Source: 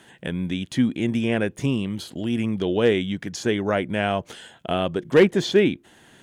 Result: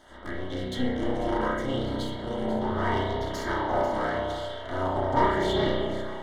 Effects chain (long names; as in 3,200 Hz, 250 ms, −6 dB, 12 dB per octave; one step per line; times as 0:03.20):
lower of the sound and its delayed copy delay 3.1 ms
high-shelf EQ 9,000 Hz −10 dB
in parallel at +1.5 dB: downward compressor, threshold −33 dBFS, peak gain reduction 20 dB
on the sum: soft clipping −11.5 dBFS, distortion −17 dB
tuned comb filter 66 Hz, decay 0.36 s, harmonics all, mix 70%
echo ahead of the sound 137 ms −15 dB
amplitude modulation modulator 260 Hz, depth 85%
Butterworth band-reject 2,500 Hz, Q 3.2
on a send: delay that swaps between a low-pass and a high-pass 246 ms, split 920 Hz, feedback 51%, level −5 dB
on the sum: spring reverb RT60 1.1 s, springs 32 ms, chirp 35 ms, DRR −4.5 dB
auto-filter bell 0.79 Hz 730–4,100 Hz +8 dB
level −1 dB